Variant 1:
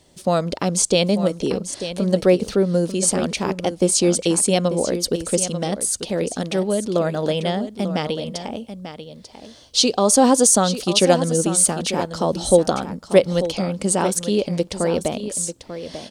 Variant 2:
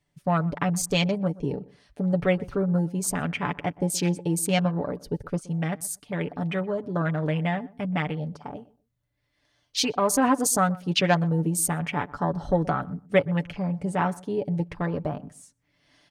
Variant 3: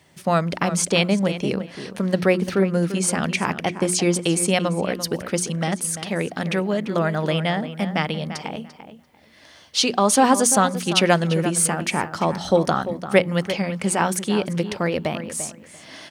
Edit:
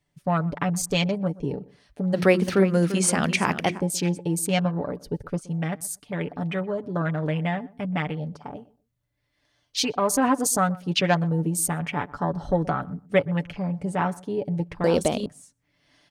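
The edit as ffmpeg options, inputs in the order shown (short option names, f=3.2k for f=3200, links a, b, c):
-filter_complex "[1:a]asplit=3[a][b][c];[a]atrim=end=2.18[d];[2:a]atrim=start=2.12:end=3.82[e];[b]atrim=start=3.76:end=14.842[f];[0:a]atrim=start=14.838:end=15.262[g];[c]atrim=start=15.258[h];[d][e]acrossfade=d=0.06:c1=tri:c2=tri[i];[i][f]acrossfade=d=0.06:c1=tri:c2=tri[j];[j][g]acrossfade=d=0.004:c1=hsin:c2=hsin[k];[k][h]acrossfade=d=0.004:c1=hsin:c2=hsin"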